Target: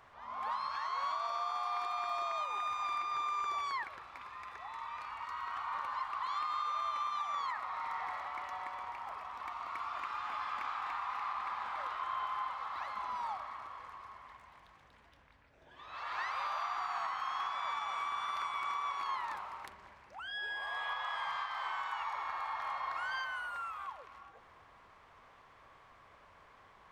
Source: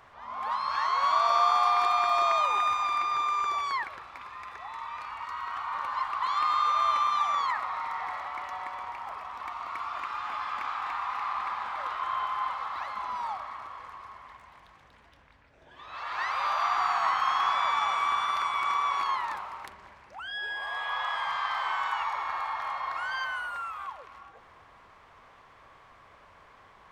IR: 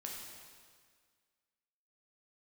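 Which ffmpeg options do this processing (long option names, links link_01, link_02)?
-af "alimiter=limit=-23dB:level=0:latency=1:release=405,volume=-5dB"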